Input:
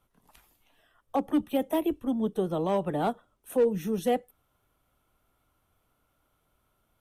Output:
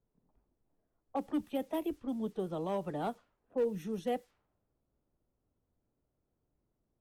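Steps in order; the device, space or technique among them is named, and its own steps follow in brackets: cassette deck with a dynamic noise filter (white noise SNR 30 dB; low-pass opened by the level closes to 390 Hz, open at -24 dBFS); gain -8 dB

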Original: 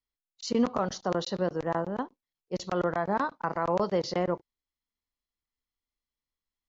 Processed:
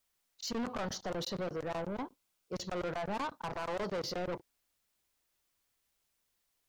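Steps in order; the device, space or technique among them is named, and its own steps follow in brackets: open-reel tape (soft clip -33 dBFS, distortion -5 dB; bell 87 Hz +4 dB; white noise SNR 40 dB); 1.86–2.55 notch 1800 Hz, Q 9.2

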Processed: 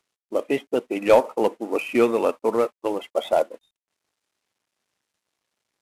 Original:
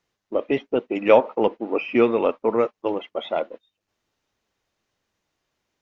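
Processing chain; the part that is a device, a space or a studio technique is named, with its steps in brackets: 3–3.42 dynamic EQ 600 Hz, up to +6 dB, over -37 dBFS, Q 1.2; early wireless headset (HPF 160 Hz 6 dB/oct; CVSD 64 kbps)

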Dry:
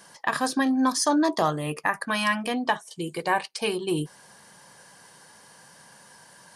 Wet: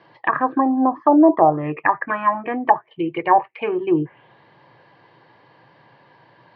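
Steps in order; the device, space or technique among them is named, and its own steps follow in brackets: envelope filter bass rig (envelope low-pass 740–4600 Hz down, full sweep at -18.5 dBFS; speaker cabinet 83–2300 Hz, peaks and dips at 120 Hz +10 dB, 200 Hz -9 dB, 330 Hz +9 dB, 1500 Hz -9 dB); gain +2.5 dB

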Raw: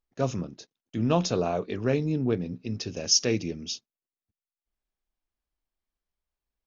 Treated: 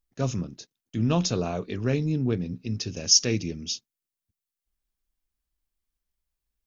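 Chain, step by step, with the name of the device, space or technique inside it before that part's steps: smiley-face EQ (low shelf 160 Hz +6 dB; bell 640 Hz -4.5 dB 1.7 oct; high shelf 5900 Hz +7.5 dB)

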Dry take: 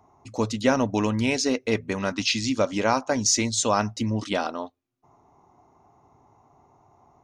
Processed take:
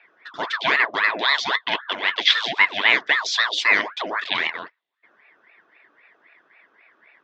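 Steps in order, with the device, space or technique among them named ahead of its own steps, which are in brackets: voice changer toy (ring modulator with a swept carrier 990 Hz, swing 60%, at 3.8 Hz; speaker cabinet 510–4100 Hz, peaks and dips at 540 Hz -7 dB, 800 Hz -9 dB, 1300 Hz -7 dB, 2000 Hz +6 dB, 3500 Hz +10 dB); gain +7 dB

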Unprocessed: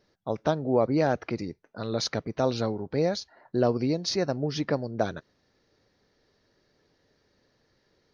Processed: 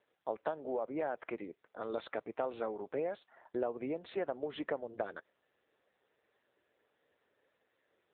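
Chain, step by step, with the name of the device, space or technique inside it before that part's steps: voicemail (BPF 450–3000 Hz; compressor 8:1, threshold -29 dBFS, peak gain reduction 9.5 dB; gain -1.5 dB; AMR-NB 6.7 kbps 8000 Hz)

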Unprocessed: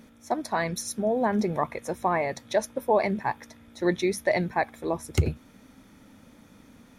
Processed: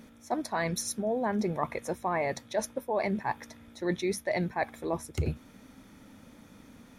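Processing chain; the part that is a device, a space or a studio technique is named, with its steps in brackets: compression on the reversed sound (reverse; compressor 6:1, threshold -26 dBFS, peak gain reduction 10 dB; reverse)

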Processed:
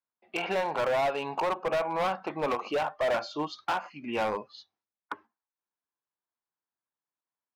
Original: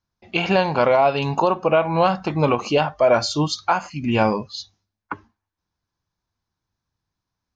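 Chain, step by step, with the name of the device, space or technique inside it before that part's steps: walkie-talkie (BPF 410–2300 Hz; hard clip -19 dBFS, distortion -8 dB; gate -45 dBFS, range -6 dB); gain -5 dB

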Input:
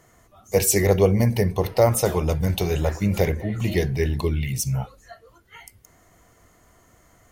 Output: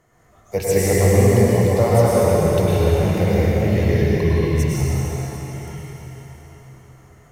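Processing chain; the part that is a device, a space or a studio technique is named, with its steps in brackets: swimming-pool hall (reverb RT60 4.3 s, pre-delay 96 ms, DRR -8 dB; high shelf 3800 Hz -7.5 dB); gain -3.5 dB

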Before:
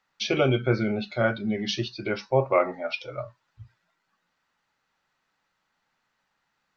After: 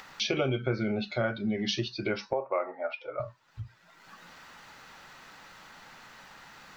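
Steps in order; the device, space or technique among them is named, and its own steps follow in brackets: upward and downward compression (upward compressor, threshold -32 dBFS; compressor 3:1, threshold -28 dBFS, peak gain reduction 10 dB); 2.33–3.2 three-band isolator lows -22 dB, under 330 Hz, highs -23 dB, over 2300 Hz; gain +1 dB

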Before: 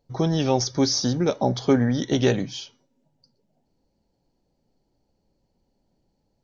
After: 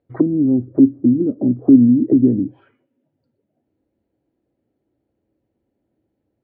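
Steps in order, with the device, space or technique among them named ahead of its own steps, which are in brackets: envelope filter bass rig (envelope low-pass 250–3900 Hz down, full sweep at -20 dBFS; speaker cabinet 86–2100 Hz, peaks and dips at 97 Hz +5 dB, 170 Hz -9 dB, 320 Hz +8 dB, 890 Hz -10 dB)

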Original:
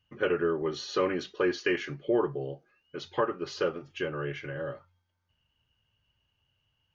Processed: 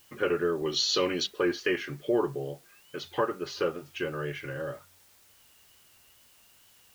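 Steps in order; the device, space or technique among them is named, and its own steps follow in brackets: 0.65–1.27 resonant high shelf 2400 Hz +10.5 dB, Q 1.5; noise-reduction cassette on a plain deck (mismatched tape noise reduction encoder only; wow and flutter; white noise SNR 28 dB)

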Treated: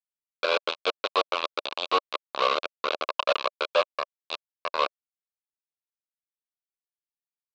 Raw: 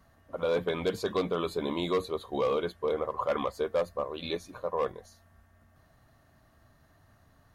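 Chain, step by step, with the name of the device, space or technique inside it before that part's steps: hand-held game console (bit-crush 4-bit; speaker cabinet 470–4400 Hz, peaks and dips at 590 Hz +6 dB, 1100 Hz +8 dB, 1900 Hz -9 dB, 2600 Hz +7 dB, 4000 Hz +7 dB)

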